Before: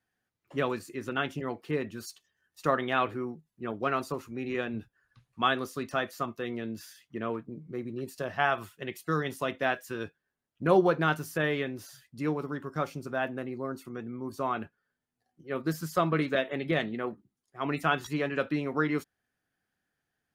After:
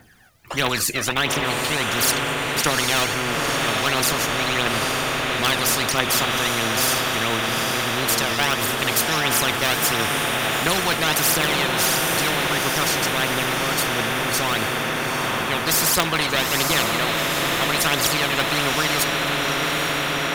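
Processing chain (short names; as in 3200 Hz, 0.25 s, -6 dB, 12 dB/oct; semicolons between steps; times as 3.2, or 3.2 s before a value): phaser 1.5 Hz, delay 1.7 ms, feedback 64%; diffused feedback echo 0.839 s, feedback 68%, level -8 dB; spectral compressor 4:1; gain +4 dB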